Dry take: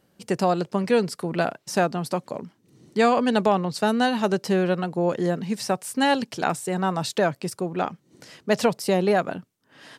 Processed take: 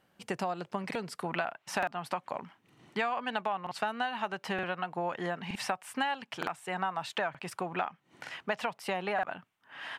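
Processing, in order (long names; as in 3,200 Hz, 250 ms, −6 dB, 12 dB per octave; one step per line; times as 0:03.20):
flat-topped bell 1,500 Hz +8 dB 2.6 octaves, from 0:01.24 +15 dB
downward compressor 6 to 1, threshold −22 dBFS, peak gain reduction 17 dB
regular buffer underruns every 0.92 s, samples 2,048, repeat, from 0:00.86
level −8 dB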